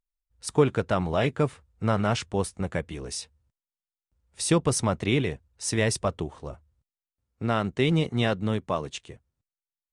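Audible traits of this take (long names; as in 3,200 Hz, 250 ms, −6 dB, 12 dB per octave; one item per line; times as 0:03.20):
background noise floor −95 dBFS
spectral slope −5.0 dB per octave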